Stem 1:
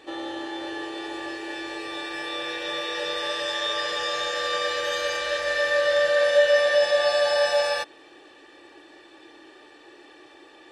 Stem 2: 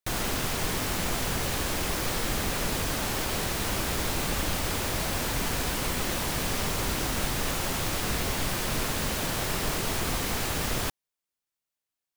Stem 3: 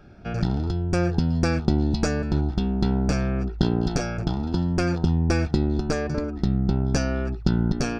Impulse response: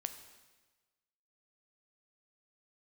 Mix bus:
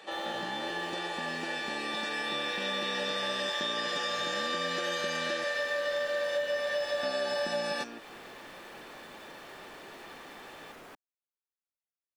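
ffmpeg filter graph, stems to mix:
-filter_complex "[0:a]highpass=f=470:w=0.5412,highpass=f=470:w=1.3066,acompressor=threshold=0.0316:ratio=6,volume=1.06[s0];[1:a]acrossover=split=220 2600:gain=0.0794 1 0.2[s1][s2][s3];[s1][s2][s3]amix=inputs=3:normalize=0,asoftclip=type=tanh:threshold=0.02,adelay=50,volume=0.266[s4];[2:a]highpass=f=210:w=0.5412,highpass=f=210:w=1.3066,volume=0.335,asplit=3[s5][s6][s7];[s5]atrim=end=5.44,asetpts=PTS-STARTPTS,afade=t=out:st=5.436:d=0.004:c=hsin[s8];[s6]atrim=start=5.44:end=7.03,asetpts=PTS-STARTPTS,volume=0[s9];[s7]atrim=start=7.03,asetpts=PTS-STARTPTS,afade=t=in:d=0.004:c=hsin[s10];[s8][s9][s10]concat=n=3:v=0:a=1[s11];[s4][s11]amix=inputs=2:normalize=0,acompressor=threshold=0.01:ratio=6,volume=1[s12];[s0][s12]amix=inputs=2:normalize=0"

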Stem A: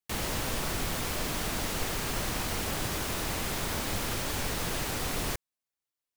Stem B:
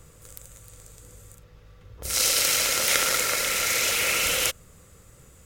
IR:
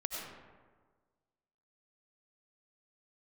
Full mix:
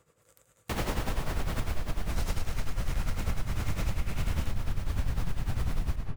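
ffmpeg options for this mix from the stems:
-filter_complex "[0:a]asubboost=boost=7.5:cutoff=140,adelay=600,volume=1.41,asplit=2[s0][s1];[s1]volume=0.668[s2];[1:a]highpass=f=370:p=1,volume=0.531[s3];[2:a]atrim=start_sample=2205[s4];[s2][s4]afir=irnorm=-1:irlink=0[s5];[s0][s3][s5]amix=inputs=3:normalize=0,highshelf=f=2900:g=-10.5,tremolo=f=10:d=0.7,acompressor=threshold=0.0562:ratio=6"

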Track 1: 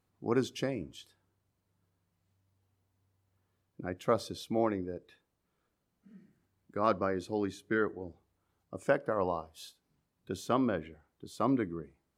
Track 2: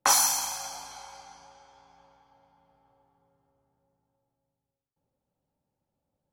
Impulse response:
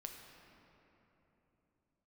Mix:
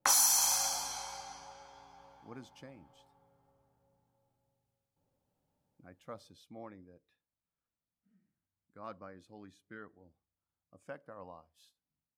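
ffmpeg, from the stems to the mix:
-filter_complex "[0:a]equalizer=f=390:w=3.4:g=-9.5,adelay=2000,volume=0.15[s0];[1:a]acompressor=threshold=0.0355:ratio=6,adynamicequalizer=threshold=0.00316:dfrequency=3900:dqfactor=0.7:tfrequency=3900:tqfactor=0.7:attack=5:release=100:ratio=0.375:range=3.5:mode=boostabove:tftype=highshelf,volume=0.794,asplit=2[s1][s2];[s2]volume=0.708[s3];[2:a]atrim=start_sample=2205[s4];[s3][s4]afir=irnorm=-1:irlink=0[s5];[s0][s1][s5]amix=inputs=3:normalize=0"

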